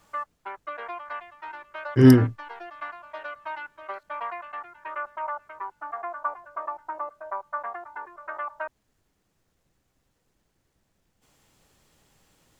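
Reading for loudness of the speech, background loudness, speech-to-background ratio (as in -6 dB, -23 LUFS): -18.0 LUFS, -36.0 LUFS, 18.0 dB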